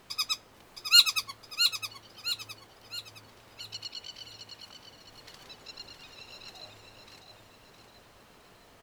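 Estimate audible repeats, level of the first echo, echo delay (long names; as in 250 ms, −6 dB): 4, −7.0 dB, 664 ms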